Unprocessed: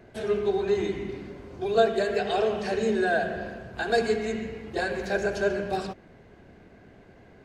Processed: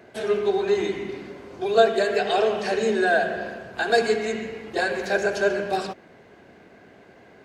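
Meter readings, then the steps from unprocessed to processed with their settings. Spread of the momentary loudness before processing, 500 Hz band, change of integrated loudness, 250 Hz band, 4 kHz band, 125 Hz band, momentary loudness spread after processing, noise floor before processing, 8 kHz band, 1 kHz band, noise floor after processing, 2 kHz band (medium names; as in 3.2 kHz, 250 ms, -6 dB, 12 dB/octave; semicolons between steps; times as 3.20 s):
12 LU, +3.5 dB, +4.0 dB, +1.0 dB, +5.5 dB, -2.5 dB, 12 LU, -53 dBFS, +5.5 dB, +4.5 dB, -51 dBFS, +5.5 dB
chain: high-pass 350 Hz 6 dB/octave; trim +5.5 dB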